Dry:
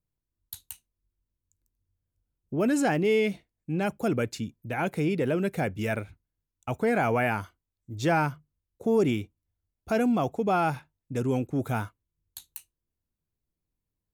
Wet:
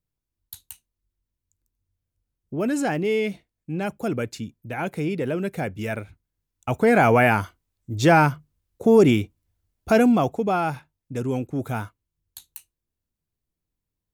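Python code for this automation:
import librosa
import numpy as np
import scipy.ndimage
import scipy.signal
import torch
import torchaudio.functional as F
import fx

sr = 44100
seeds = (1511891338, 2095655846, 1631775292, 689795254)

y = fx.gain(x, sr, db=fx.line((6.0, 0.5), (7.01, 8.5), (9.95, 8.5), (10.63, 1.0)))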